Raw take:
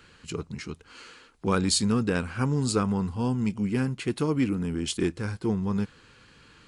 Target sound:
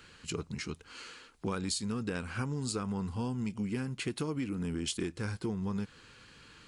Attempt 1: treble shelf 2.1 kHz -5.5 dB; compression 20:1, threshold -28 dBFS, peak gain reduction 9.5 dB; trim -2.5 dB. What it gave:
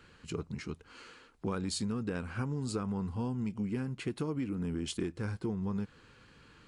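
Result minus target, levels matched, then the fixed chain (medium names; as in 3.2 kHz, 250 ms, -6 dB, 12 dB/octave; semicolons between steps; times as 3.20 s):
4 kHz band -3.5 dB
treble shelf 2.1 kHz +4 dB; compression 20:1, threshold -28 dBFS, peak gain reduction 12 dB; trim -2.5 dB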